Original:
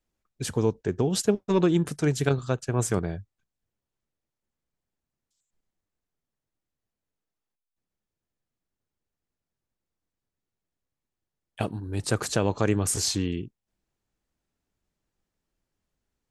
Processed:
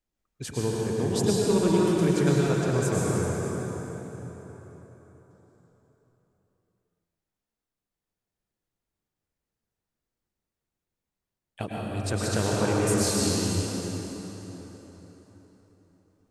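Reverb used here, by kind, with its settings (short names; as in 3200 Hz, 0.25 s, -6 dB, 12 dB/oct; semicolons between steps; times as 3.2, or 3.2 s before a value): plate-style reverb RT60 4.3 s, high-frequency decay 0.7×, pre-delay 90 ms, DRR -5.5 dB; gain -5 dB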